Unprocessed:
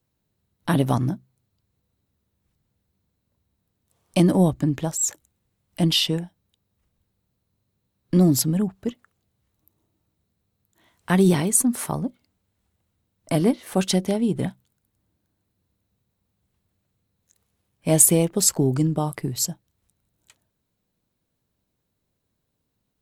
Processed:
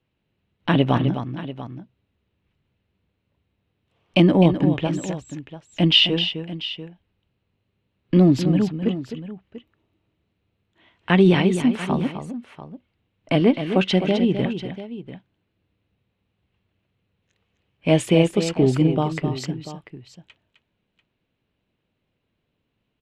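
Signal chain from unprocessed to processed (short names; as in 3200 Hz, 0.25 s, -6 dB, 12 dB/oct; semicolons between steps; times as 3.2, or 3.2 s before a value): synth low-pass 2800 Hz, resonance Q 3.2; bell 380 Hz +3.5 dB 2 oct; on a send: tapped delay 0.258/0.691 s -9/-14.5 dB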